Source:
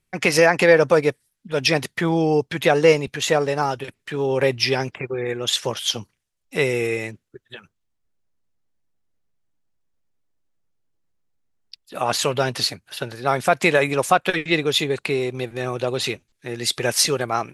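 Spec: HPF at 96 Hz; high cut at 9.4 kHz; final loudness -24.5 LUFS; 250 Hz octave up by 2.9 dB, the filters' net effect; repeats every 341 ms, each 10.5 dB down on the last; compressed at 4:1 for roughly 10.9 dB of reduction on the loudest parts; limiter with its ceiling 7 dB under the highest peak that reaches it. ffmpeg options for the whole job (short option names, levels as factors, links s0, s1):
-af "highpass=96,lowpass=9400,equalizer=f=250:t=o:g=4.5,acompressor=threshold=0.0794:ratio=4,alimiter=limit=0.15:level=0:latency=1,aecho=1:1:341|682|1023:0.299|0.0896|0.0269,volume=1.41"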